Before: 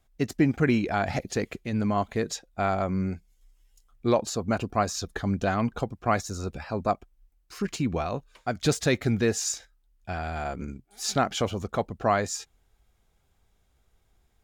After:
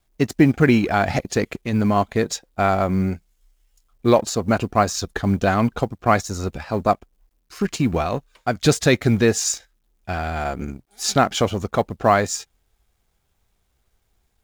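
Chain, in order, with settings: G.711 law mismatch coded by A; gain +8 dB

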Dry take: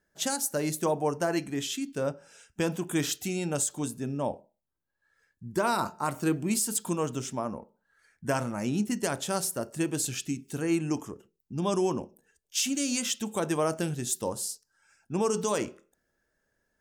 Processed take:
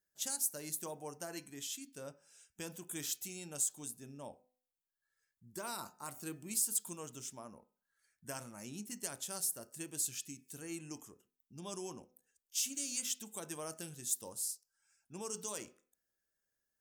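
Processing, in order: pre-emphasis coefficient 0.8; de-hum 252.4 Hz, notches 10; gain -4.5 dB

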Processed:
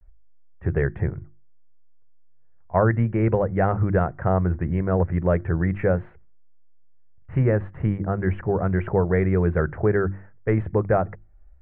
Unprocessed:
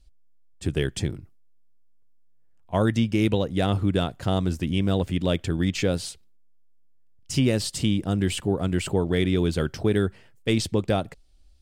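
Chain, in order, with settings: steep low-pass 1900 Hz 48 dB/oct; bell 260 Hz -12 dB 0.7 oct; notches 50/100/150/200/250/300/350 Hz; vibrato 0.36 Hz 41 cents; gain +6 dB

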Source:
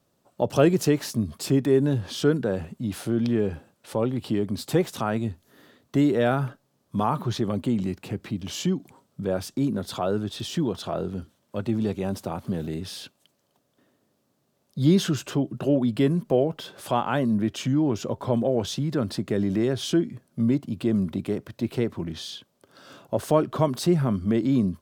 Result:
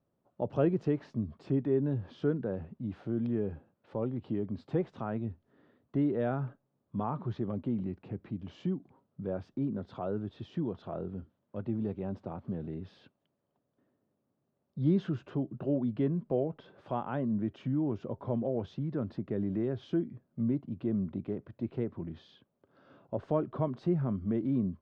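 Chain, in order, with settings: tape spacing loss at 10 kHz 45 dB; gain -7 dB

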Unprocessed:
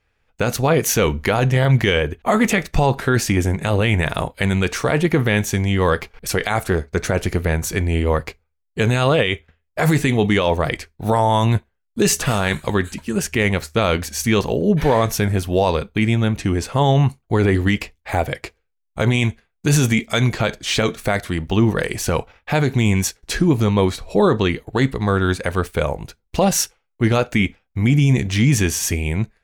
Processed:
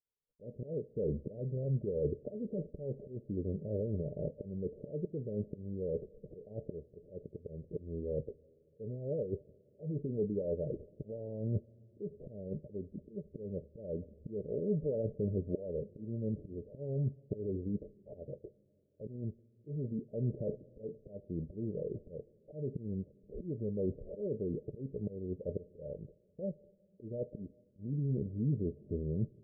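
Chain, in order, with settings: auto swell 0.651 s; low shelf 180 Hz -10.5 dB; reverse; compressor 4:1, threshold -29 dBFS, peak gain reduction 13.5 dB; reverse; expander -55 dBFS; rippled Chebyshev low-pass 610 Hz, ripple 6 dB; on a send: reverb RT60 3.2 s, pre-delay 3 ms, DRR 23 dB; on the sum: gain +1 dB

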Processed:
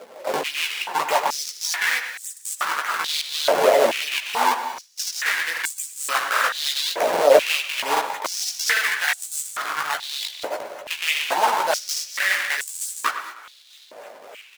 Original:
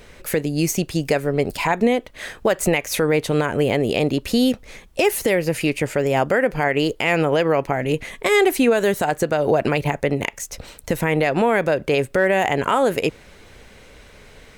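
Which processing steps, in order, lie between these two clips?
nonlinear frequency compression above 3000 Hz 1.5:1; 9.4–10.25 negative-ratio compressor -26 dBFS, ratio -1; limiter -14.5 dBFS, peak gain reduction 8.5 dB; decimation with a swept rate 40×, swing 160% 3.4 Hz; chorus voices 6, 0.24 Hz, delay 16 ms, depth 4.9 ms; speakerphone echo 0.1 s, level -8 dB; non-linear reverb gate 0.25 s rising, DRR 11 dB; crackling interface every 0.80 s, samples 2048, repeat, from 0.72; stepped high-pass 2.3 Hz 600–7900 Hz; gain +6.5 dB

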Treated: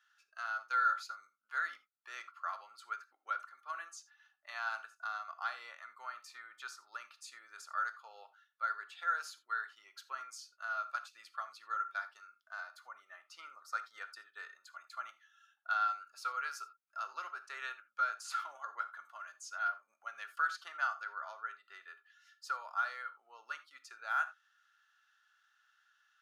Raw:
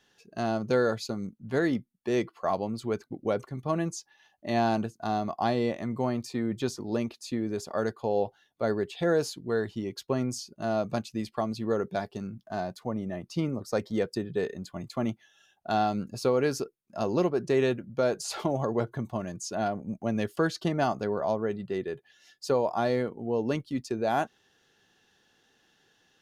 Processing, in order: 7.15–7.62 dynamic EQ 8600 Hz, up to +7 dB, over -59 dBFS, Q 1.2; ladder high-pass 1300 Hz, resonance 85%; on a send: reverb, pre-delay 3 ms, DRR 10 dB; on the sum: gain +1 dB

